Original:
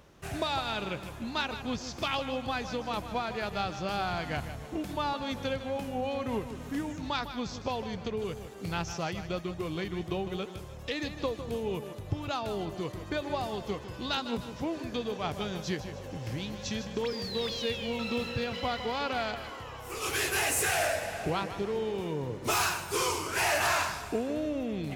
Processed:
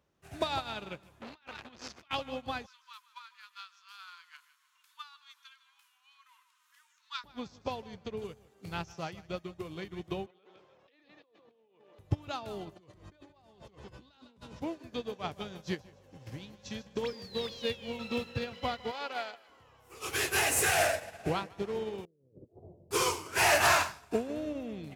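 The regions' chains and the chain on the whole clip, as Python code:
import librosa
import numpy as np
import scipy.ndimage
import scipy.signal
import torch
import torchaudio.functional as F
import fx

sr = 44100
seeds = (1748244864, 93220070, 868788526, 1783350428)

y = fx.chain(x, sr, fx.peak_eq(hz=1900.0, db=10.5, octaves=2.2),
    fx.over_compress(threshold_db=-33.0, ratio=-0.5),
    fx.transformer_sat(knee_hz=1900.0), at=(1.21, 2.11))
y = fx.chain(y, sr, fx.cheby_ripple_highpass(hz=970.0, ripple_db=3),
    fx.high_shelf(hz=8300.0, db=7.0), at=(2.66, 7.24))
y = fx.chain(y, sr, fx.bandpass_edges(low_hz=350.0, high_hz=4500.0),
    fx.air_absorb(metres=78.0),
    fx.over_compress(threshold_db=-46.0, ratio=-1.0), at=(10.26, 11.99))
y = fx.chain(y, sr, fx.lowpass(hz=9400.0, slope=12),
    fx.low_shelf(hz=62.0, db=11.0),
    fx.over_compress(threshold_db=-41.0, ratio=-1.0), at=(12.76, 14.62))
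y = fx.chain(y, sr, fx.highpass(hz=410.0, slope=12),
    fx.notch(hz=1100.0, q=25.0), at=(18.91, 19.49))
y = fx.chain(y, sr, fx.steep_lowpass(hz=590.0, slope=48),
    fx.over_compress(threshold_db=-41.0, ratio=-0.5), at=(22.05, 22.91))
y = scipy.signal.sosfilt(scipy.signal.butter(2, 51.0, 'highpass', fs=sr, output='sos'), y)
y = fx.upward_expand(y, sr, threshold_db=-41.0, expansion=2.5)
y = y * librosa.db_to_amplitude(4.0)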